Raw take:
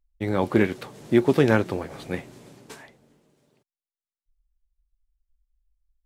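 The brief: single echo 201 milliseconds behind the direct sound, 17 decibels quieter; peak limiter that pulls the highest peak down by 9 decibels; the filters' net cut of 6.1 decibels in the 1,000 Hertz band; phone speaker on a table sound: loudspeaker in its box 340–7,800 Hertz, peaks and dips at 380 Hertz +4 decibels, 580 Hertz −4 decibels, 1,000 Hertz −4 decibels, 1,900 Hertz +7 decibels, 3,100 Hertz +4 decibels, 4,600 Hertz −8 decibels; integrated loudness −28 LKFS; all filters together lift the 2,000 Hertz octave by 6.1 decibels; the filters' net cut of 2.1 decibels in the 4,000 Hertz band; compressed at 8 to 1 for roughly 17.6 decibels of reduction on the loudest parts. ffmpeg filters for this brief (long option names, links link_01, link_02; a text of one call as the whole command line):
ffmpeg -i in.wav -af "equalizer=frequency=1000:width_type=o:gain=-9,equalizer=frequency=2000:width_type=o:gain=8,equalizer=frequency=4000:width_type=o:gain=-8,acompressor=threshold=-33dB:ratio=8,alimiter=level_in=7.5dB:limit=-24dB:level=0:latency=1,volume=-7.5dB,highpass=frequency=340:width=0.5412,highpass=frequency=340:width=1.3066,equalizer=frequency=380:width_type=q:width=4:gain=4,equalizer=frequency=580:width_type=q:width=4:gain=-4,equalizer=frequency=1000:width_type=q:width=4:gain=-4,equalizer=frequency=1900:width_type=q:width=4:gain=7,equalizer=frequency=3100:width_type=q:width=4:gain=4,equalizer=frequency=4600:width_type=q:width=4:gain=-8,lowpass=frequency=7800:width=0.5412,lowpass=frequency=7800:width=1.3066,aecho=1:1:201:0.141,volume=16.5dB" out.wav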